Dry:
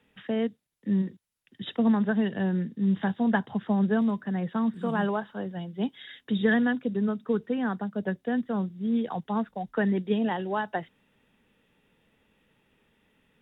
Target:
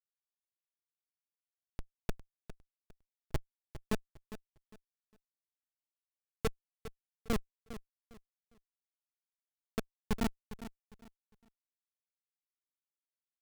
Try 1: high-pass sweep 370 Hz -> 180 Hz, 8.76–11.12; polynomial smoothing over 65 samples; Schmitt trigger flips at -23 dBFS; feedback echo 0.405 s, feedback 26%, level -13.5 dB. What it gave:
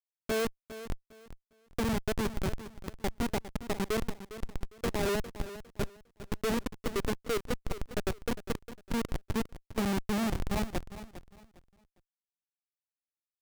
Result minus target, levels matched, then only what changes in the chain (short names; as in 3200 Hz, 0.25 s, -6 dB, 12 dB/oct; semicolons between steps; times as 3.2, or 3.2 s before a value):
Schmitt trigger: distortion -9 dB
change: Schmitt trigger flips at -16 dBFS